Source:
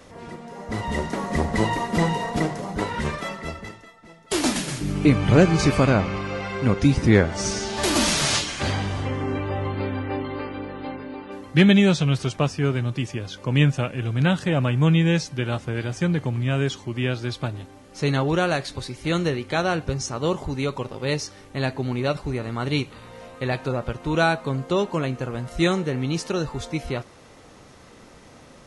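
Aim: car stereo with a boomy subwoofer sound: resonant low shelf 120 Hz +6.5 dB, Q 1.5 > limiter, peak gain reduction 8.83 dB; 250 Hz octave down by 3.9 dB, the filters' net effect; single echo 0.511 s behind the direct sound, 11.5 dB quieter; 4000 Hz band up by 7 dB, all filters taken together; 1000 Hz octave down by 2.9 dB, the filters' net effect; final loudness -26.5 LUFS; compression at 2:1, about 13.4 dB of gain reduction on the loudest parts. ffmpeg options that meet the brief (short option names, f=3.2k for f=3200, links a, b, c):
-af "equalizer=f=250:t=o:g=-4,equalizer=f=1k:t=o:g=-4,equalizer=f=4k:t=o:g=9,acompressor=threshold=-38dB:ratio=2,lowshelf=f=120:t=q:w=1.5:g=6.5,aecho=1:1:511:0.266,volume=8.5dB,alimiter=limit=-16.5dB:level=0:latency=1"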